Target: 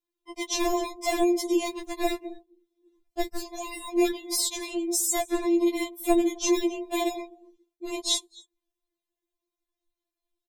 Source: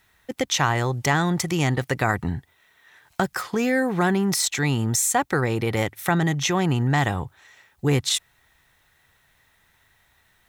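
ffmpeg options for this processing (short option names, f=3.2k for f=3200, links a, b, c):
-filter_complex "[0:a]aecho=1:1:259:0.0841,acrossover=split=570|2900[a][b][c];[b]acrusher=samples=29:mix=1:aa=0.000001[d];[a][d][c]amix=inputs=3:normalize=0,afftdn=nr=24:nf=-45,afftfilt=real='re*4*eq(mod(b,16),0)':imag='im*4*eq(mod(b,16),0)':win_size=2048:overlap=0.75"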